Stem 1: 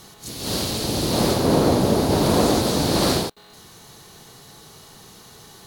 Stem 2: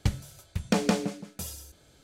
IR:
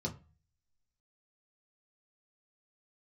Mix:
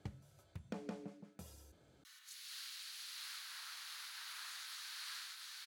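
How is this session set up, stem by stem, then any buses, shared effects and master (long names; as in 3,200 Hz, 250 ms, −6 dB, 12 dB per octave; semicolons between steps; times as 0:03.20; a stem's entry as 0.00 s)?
−4.0 dB, 2.05 s, no send, echo send −4 dB, Butterworth high-pass 1,500 Hz 36 dB per octave
−6.0 dB, 0.00 s, no send, no echo send, no processing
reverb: not used
echo: single-tap delay 695 ms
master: high-pass filter 81 Hz; high-shelf EQ 2,400 Hz −11.5 dB; downward compressor 2 to 1, threshold −54 dBFS, peak gain reduction 15.5 dB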